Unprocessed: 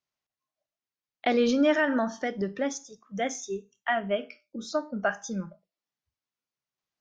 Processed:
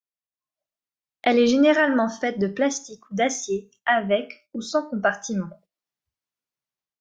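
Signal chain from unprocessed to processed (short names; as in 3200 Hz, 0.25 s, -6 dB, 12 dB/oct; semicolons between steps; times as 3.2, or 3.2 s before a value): gate -58 dBFS, range -9 dB; AGC gain up to 15 dB; gain -6 dB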